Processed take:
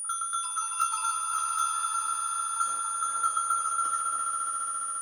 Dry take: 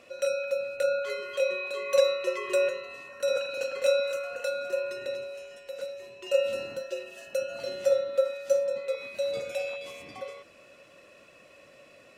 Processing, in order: low-pass opened by the level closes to 340 Hz, open at -21.5 dBFS; swelling echo 0.167 s, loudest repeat 8, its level -11 dB; wide varispeed 2.43×; whine 9500 Hz -27 dBFS; gain -5 dB

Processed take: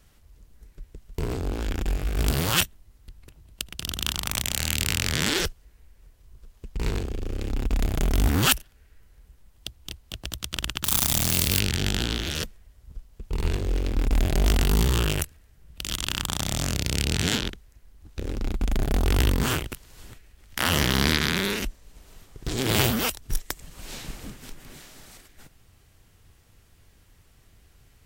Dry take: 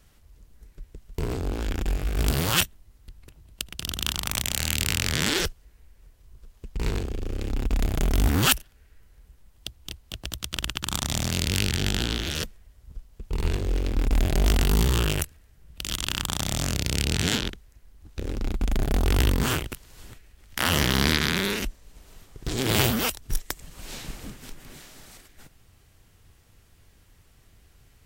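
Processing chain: 10.84–11.6 switching spikes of -13 dBFS

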